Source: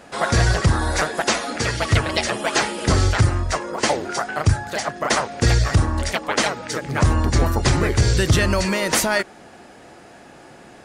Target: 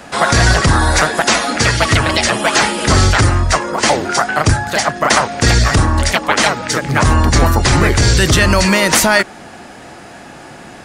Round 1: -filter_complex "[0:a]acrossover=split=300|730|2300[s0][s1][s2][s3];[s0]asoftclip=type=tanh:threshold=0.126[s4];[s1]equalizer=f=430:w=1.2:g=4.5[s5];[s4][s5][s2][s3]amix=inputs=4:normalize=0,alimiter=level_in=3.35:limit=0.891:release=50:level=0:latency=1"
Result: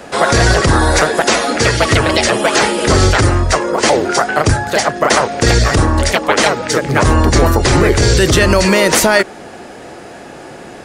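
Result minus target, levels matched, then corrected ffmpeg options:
500 Hz band +4.0 dB
-filter_complex "[0:a]acrossover=split=300|730|2300[s0][s1][s2][s3];[s0]asoftclip=type=tanh:threshold=0.126[s4];[s1]equalizer=f=430:w=1.2:g=-6.5[s5];[s4][s5][s2][s3]amix=inputs=4:normalize=0,alimiter=level_in=3.35:limit=0.891:release=50:level=0:latency=1"

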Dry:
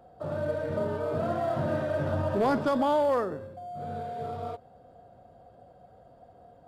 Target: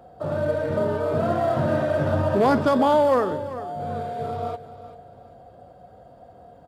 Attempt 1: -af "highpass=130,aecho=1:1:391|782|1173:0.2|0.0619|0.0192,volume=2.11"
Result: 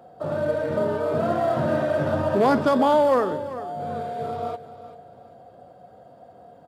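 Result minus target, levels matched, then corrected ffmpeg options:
125 Hz band -3.5 dB
-af "highpass=34,aecho=1:1:391|782|1173:0.2|0.0619|0.0192,volume=2.11"

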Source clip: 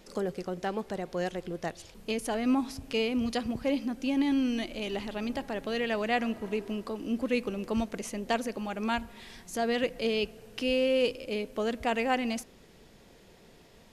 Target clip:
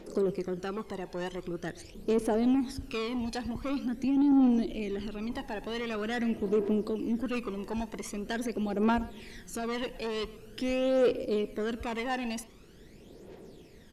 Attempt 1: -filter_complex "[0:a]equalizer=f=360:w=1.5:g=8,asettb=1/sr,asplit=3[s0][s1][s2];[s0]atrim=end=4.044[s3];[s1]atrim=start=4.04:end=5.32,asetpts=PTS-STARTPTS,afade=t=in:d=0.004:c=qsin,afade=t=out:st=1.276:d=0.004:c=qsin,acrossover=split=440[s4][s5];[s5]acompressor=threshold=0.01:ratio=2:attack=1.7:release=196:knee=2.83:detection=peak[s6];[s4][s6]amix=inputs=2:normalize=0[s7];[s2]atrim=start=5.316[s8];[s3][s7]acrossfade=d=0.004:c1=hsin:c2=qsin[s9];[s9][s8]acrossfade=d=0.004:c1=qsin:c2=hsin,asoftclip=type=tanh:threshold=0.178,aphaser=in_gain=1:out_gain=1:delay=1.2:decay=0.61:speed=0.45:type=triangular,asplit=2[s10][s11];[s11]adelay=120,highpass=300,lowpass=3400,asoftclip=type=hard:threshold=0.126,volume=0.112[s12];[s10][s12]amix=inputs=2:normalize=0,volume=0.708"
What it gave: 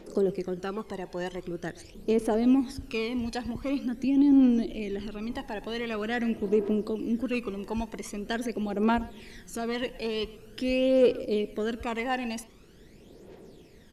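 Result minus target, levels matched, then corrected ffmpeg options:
saturation: distortion -11 dB
-filter_complex "[0:a]equalizer=f=360:w=1.5:g=8,asettb=1/sr,asplit=3[s0][s1][s2];[s0]atrim=end=4.044[s3];[s1]atrim=start=4.04:end=5.32,asetpts=PTS-STARTPTS,afade=t=in:d=0.004:c=qsin,afade=t=out:st=1.276:d=0.004:c=qsin,acrossover=split=440[s4][s5];[s5]acompressor=threshold=0.01:ratio=2:attack=1.7:release=196:knee=2.83:detection=peak[s6];[s4][s6]amix=inputs=2:normalize=0[s7];[s2]atrim=start=5.316[s8];[s3][s7]acrossfade=d=0.004:c1=hsin:c2=qsin[s9];[s9][s8]acrossfade=d=0.004:c1=qsin:c2=hsin,asoftclip=type=tanh:threshold=0.0668,aphaser=in_gain=1:out_gain=1:delay=1.2:decay=0.61:speed=0.45:type=triangular,asplit=2[s10][s11];[s11]adelay=120,highpass=300,lowpass=3400,asoftclip=type=hard:threshold=0.126,volume=0.112[s12];[s10][s12]amix=inputs=2:normalize=0,volume=0.708"

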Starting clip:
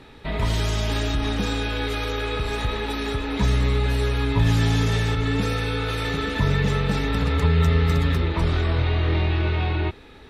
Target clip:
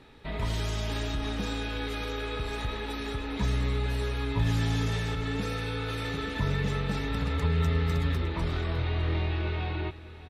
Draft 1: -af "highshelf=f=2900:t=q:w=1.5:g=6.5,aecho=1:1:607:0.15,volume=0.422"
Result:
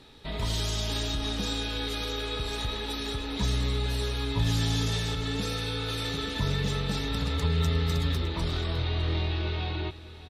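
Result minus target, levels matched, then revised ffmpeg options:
8 kHz band +6.5 dB
-af "aecho=1:1:607:0.15,volume=0.422"

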